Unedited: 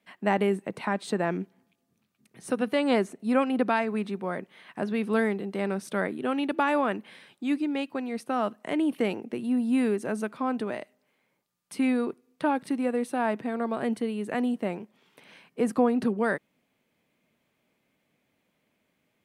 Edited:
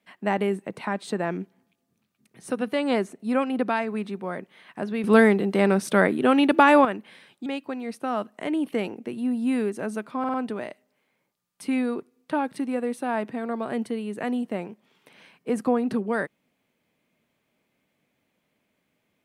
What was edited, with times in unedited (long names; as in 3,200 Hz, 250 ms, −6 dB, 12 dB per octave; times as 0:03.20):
0:05.04–0:06.85: clip gain +9 dB
0:07.46–0:07.72: remove
0:10.45: stutter 0.05 s, 4 plays